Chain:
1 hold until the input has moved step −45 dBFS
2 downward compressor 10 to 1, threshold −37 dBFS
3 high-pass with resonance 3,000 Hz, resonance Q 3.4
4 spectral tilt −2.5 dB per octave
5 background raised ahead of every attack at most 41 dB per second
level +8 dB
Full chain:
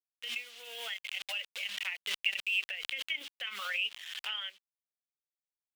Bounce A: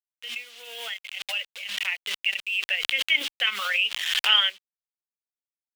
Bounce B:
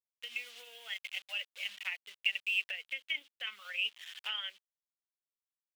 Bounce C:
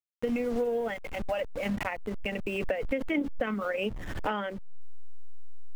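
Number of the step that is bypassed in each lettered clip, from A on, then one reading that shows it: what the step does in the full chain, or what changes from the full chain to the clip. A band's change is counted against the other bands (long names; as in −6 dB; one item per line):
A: 2, average gain reduction 5.5 dB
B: 5, 2 kHz band +4.5 dB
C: 3, 500 Hz band +29.0 dB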